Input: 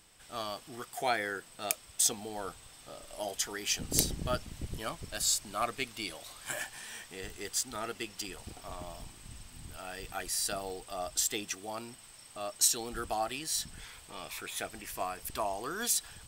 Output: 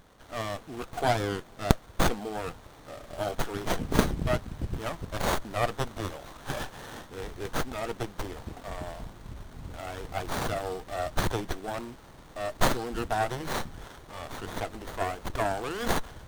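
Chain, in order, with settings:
windowed peak hold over 17 samples
level +7 dB

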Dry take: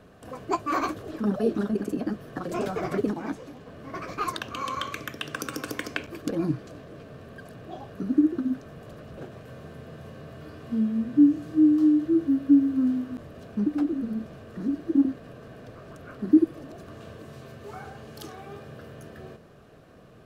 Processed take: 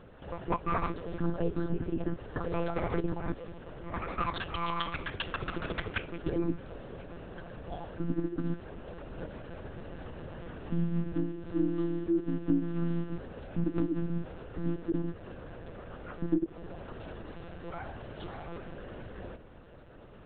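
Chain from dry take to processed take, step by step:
downward compressor 3 to 1, threshold −27 dBFS, peak gain reduction 11.5 dB
one-pitch LPC vocoder at 8 kHz 170 Hz

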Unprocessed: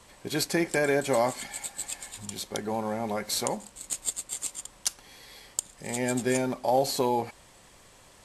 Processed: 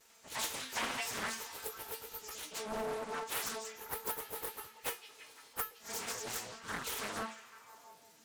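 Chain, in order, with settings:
partials spread apart or drawn together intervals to 92%
parametric band 6,900 Hz +15 dB 0.23 octaves
stiff-string resonator 220 Hz, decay 0.44 s, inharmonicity 0.002
full-wave rectification
high-pass filter 53 Hz 12 dB per octave
low-shelf EQ 270 Hz −4.5 dB
echo through a band-pass that steps 170 ms, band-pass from 3,700 Hz, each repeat −0.7 octaves, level −8 dB
highs frequency-modulated by the lows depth 0.89 ms
level +11 dB

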